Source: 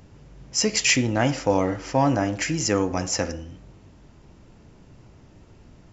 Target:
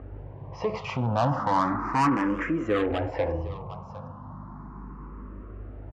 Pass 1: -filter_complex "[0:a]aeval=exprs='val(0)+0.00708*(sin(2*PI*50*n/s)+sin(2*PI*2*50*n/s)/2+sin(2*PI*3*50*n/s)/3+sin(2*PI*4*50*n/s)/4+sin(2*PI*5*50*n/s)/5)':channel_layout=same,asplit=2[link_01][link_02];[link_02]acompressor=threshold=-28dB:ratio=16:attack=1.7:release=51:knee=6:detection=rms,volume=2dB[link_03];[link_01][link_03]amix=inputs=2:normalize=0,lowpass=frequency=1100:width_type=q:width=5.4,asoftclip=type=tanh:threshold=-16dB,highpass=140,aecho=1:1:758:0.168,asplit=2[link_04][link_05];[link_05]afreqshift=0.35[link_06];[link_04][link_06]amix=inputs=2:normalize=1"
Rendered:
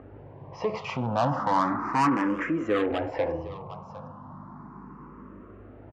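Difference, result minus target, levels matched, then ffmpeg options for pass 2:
125 Hz band −4.0 dB
-filter_complex "[0:a]aeval=exprs='val(0)+0.00708*(sin(2*PI*50*n/s)+sin(2*PI*2*50*n/s)/2+sin(2*PI*3*50*n/s)/3+sin(2*PI*4*50*n/s)/4+sin(2*PI*5*50*n/s)/5)':channel_layout=same,asplit=2[link_01][link_02];[link_02]acompressor=threshold=-28dB:ratio=16:attack=1.7:release=51:knee=6:detection=rms,volume=2dB[link_03];[link_01][link_03]amix=inputs=2:normalize=0,lowpass=frequency=1100:width_type=q:width=5.4,asoftclip=type=tanh:threshold=-16dB,highpass=51,aecho=1:1:758:0.168,asplit=2[link_04][link_05];[link_05]afreqshift=0.35[link_06];[link_04][link_06]amix=inputs=2:normalize=1"

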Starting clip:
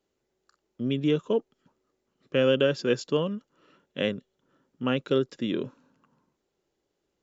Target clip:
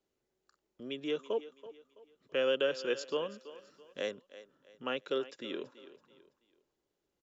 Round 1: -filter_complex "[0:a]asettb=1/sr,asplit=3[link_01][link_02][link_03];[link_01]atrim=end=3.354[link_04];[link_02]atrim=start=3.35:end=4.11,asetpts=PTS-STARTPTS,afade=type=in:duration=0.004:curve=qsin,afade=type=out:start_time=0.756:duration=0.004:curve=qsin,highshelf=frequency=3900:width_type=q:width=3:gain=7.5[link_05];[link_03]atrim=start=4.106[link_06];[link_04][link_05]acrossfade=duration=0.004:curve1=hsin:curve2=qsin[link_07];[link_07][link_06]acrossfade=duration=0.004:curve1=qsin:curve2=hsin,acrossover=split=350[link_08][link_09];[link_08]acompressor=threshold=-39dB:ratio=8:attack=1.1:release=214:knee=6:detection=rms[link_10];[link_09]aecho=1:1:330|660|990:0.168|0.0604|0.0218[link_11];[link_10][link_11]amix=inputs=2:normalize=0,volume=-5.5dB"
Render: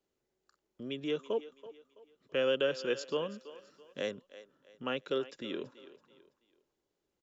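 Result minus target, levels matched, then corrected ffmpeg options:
downward compressor: peak gain reduction −8.5 dB
-filter_complex "[0:a]asettb=1/sr,asplit=3[link_01][link_02][link_03];[link_01]atrim=end=3.354[link_04];[link_02]atrim=start=3.35:end=4.11,asetpts=PTS-STARTPTS,afade=type=in:duration=0.004:curve=qsin,afade=type=out:start_time=0.756:duration=0.004:curve=qsin,highshelf=frequency=3900:width_type=q:width=3:gain=7.5[link_05];[link_03]atrim=start=4.106[link_06];[link_04][link_05]acrossfade=duration=0.004:curve1=hsin:curve2=qsin[link_07];[link_07][link_06]acrossfade=duration=0.004:curve1=qsin:curve2=hsin,acrossover=split=350[link_08][link_09];[link_08]acompressor=threshold=-48.5dB:ratio=8:attack=1.1:release=214:knee=6:detection=rms[link_10];[link_09]aecho=1:1:330|660|990:0.168|0.0604|0.0218[link_11];[link_10][link_11]amix=inputs=2:normalize=0,volume=-5.5dB"

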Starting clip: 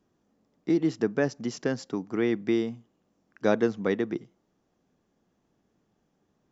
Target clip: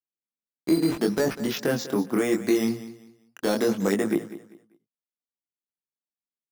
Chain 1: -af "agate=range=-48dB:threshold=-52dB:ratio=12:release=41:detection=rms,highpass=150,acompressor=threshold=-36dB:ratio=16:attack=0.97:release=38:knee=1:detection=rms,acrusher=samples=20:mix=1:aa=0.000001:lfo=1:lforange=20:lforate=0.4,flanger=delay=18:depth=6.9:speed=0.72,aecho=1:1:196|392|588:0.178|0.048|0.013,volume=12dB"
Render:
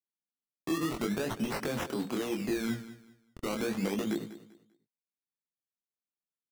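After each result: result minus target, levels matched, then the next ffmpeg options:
downward compressor: peak gain reduction +10.5 dB; sample-and-hold swept by an LFO: distortion +9 dB
-af "agate=range=-48dB:threshold=-52dB:ratio=12:release=41:detection=rms,highpass=150,acompressor=threshold=-25dB:ratio=16:attack=0.97:release=38:knee=1:detection=rms,acrusher=samples=20:mix=1:aa=0.000001:lfo=1:lforange=20:lforate=0.4,flanger=delay=18:depth=6.9:speed=0.72,aecho=1:1:196|392|588:0.178|0.048|0.013,volume=12dB"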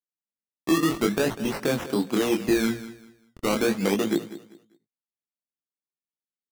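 sample-and-hold swept by an LFO: distortion +8 dB
-af "agate=range=-48dB:threshold=-52dB:ratio=12:release=41:detection=rms,highpass=150,acompressor=threshold=-25dB:ratio=16:attack=0.97:release=38:knee=1:detection=rms,acrusher=samples=7:mix=1:aa=0.000001:lfo=1:lforange=7:lforate=0.4,flanger=delay=18:depth=6.9:speed=0.72,aecho=1:1:196|392|588:0.178|0.048|0.013,volume=12dB"

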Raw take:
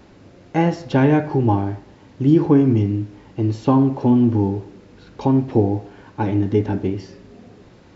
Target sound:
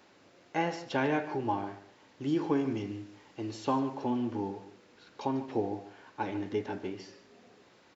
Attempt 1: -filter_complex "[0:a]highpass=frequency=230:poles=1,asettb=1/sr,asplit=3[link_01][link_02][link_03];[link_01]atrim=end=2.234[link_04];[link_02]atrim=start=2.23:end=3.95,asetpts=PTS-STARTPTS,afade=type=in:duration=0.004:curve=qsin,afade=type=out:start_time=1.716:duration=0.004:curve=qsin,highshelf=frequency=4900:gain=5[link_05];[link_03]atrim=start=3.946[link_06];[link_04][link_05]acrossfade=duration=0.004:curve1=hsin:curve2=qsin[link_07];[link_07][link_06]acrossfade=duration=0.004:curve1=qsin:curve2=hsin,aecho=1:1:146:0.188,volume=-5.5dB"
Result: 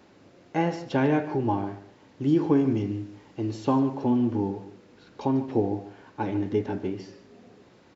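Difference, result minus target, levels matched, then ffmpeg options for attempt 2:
1,000 Hz band −4.0 dB
-filter_complex "[0:a]highpass=frequency=880:poles=1,asettb=1/sr,asplit=3[link_01][link_02][link_03];[link_01]atrim=end=2.234[link_04];[link_02]atrim=start=2.23:end=3.95,asetpts=PTS-STARTPTS,afade=type=in:duration=0.004:curve=qsin,afade=type=out:start_time=1.716:duration=0.004:curve=qsin,highshelf=frequency=4900:gain=5[link_05];[link_03]atrim=start=3.946[link_06];[link_04][link_05]acrossfade=duration=0.004:curve1=hsin:curve2=qsin[link_07];[link_07][link_06]acrossfade=duration=0.004:curve1=qsin:curve2=hsin,aecho=1:1:146:0.188,volume=-5.5dB"

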